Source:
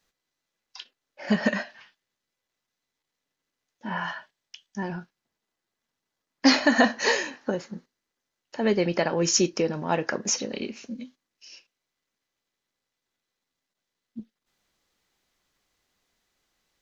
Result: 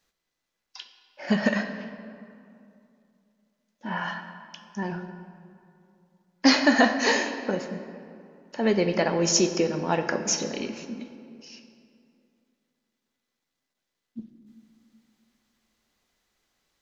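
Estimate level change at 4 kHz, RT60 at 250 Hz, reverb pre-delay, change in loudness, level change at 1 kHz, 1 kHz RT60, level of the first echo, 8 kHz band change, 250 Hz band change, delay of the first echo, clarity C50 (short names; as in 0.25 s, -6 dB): +0.5 dB, 2.8 s, 10 ms, 0.0 dB, +1.0 dB, 2.5 s, none, n/a, +1.0 dB, none, 8.5 dB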